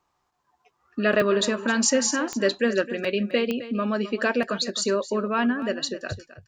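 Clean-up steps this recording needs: de-click; inverse comb 0.263 s -14.5 dB

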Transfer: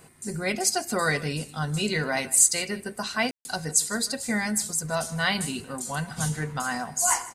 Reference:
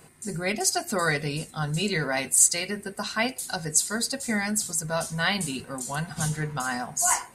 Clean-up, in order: room tone fill 3.31–3.45; inverse comb 0.156 s -19 dB

